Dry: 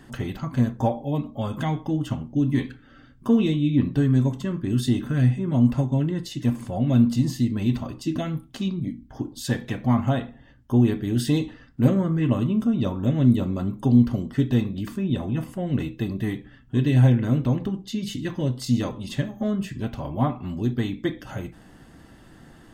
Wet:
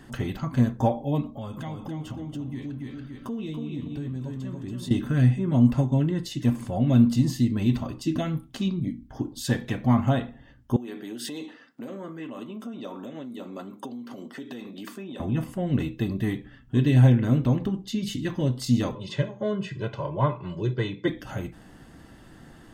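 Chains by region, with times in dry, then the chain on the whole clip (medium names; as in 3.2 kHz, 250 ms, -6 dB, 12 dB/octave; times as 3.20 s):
1.31–4.91 s: peaking EQ 1.6 kHz -3 dB 0.43 oct + feedback delay 283 ms, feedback 25%, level -4.5 dB + compression 3:1, threshold -34 dBFS
10.76–15.20 s: compression 12:1, threshold -25 dBFS + Bessel high-pass 350 Hz, order 4
18.95–21.08 s: high-pass 120 Hz 24 dB/octave + distance through air 110 m + comb 2 ms, depth 90%
whole clip: none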